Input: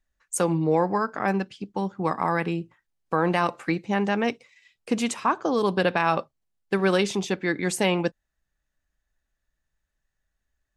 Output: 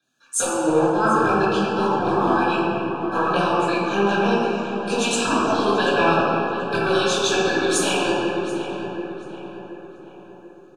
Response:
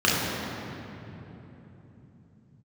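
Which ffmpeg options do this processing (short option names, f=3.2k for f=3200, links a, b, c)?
-filter_complex "[0:a]highpass=280,acompressor=threshold=-31dB:ratio=6,acrossover=split=420|990[a][b][c];[a]aeval=exprs='(tanh(501*val(0)+0.7)-tanh(0.7))/501':c=same[d];[b]aeval=exprs='max(val(0),0)':c=same[e];[d][e][c]amix=inputs=3:normalize=0,aphaser=in_gain=1:out_gain=1:delay=4.7:decay=0.61:speed=1.5:type=sinusoidal,asuperstop=centerf=2000:order=12:qfactor=3,asplit=2[f][g];[g]adelay=15,volume=-11dB[h];[f][h]amix=inputs=2:normalize=0,asplit=2[i][j];[j]adelay=734,lowpass=f=2.3k:p=1,volume=-10dB,asplit=2[k][l];[l]adelay=734,lowpass=f=2.3k:p=1,volume=0.49,asplit=2[m][n];[n]adelay=734,lowpass=f=2.3k:p=1,volume=0.49,asplit=2[o][p];[p]adelay=734,lowpass=f=2.3k:p=1,volume=0.49,asplit=2[q][r];[r]adelay=734,lowpass=f=2.3k:p=1,volume=0.49[s];[i][k][m][o][q][s]amix=inputs=6:normalize=0[t];[1:a]atrim=start_sample=2205,asetrate=61740,aresample=44100[u];[t][u]afir=irnorm=-1:irlink=0"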